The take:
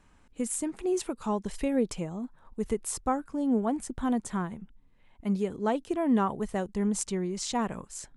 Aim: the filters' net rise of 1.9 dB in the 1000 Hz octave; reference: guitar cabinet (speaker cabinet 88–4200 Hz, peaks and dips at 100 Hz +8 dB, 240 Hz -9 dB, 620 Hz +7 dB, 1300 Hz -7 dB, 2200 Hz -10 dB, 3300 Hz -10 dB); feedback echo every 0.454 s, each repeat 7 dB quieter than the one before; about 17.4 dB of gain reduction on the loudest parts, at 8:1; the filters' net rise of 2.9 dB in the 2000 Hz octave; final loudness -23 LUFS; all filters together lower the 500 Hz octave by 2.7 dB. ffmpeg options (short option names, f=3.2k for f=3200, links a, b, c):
-af "equalizer=f=500:t=o:g=-8,equalizer=f=1k:t=o:g=4,equalizer=f=2k:t=o:g=9,acompressor=threshold=-40dB:ratio=8,highpass=88,equalizer=f=100:t=q:w=4:g=8,equalizer=f=240:t=q:w=4:g=-9,equalizer=f=620:t=q:w=4:g=7,equalizer=f=1.3k:t=q:w=4:g=-7,equalizer=f=2.2k:t=q:w=4:g=-10,equalizer=f=3.3k:t=q:w=4:g=-10,lowpass=f=4.2k:w=0.5412,lowpass=f=4.2k:w=1.3066,aecho=1:1:454|908|1362|1816|2270:0.447|0.201|0.0905|0.0407|0.0183,volume=23.5dB"